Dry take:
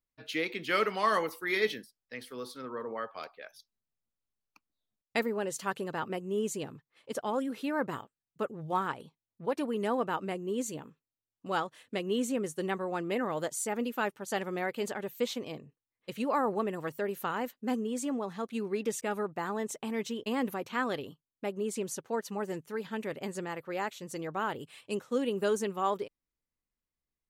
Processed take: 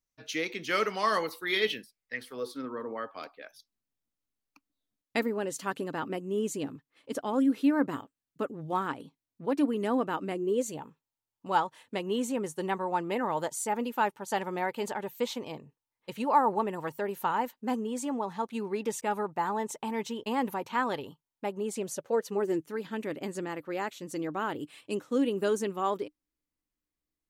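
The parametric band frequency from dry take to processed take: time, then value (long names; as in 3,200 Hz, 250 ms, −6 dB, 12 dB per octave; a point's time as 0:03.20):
parametric band +12 dB 0.3 octaves
0:00.92 6,000 Hz
0:02.15 1,900 Hz
0:02.56 280 Hz
0:10.31 280 Hz
0:10.82 900 Hz
0:21.57 900 Hz
0:22.67 300 Hz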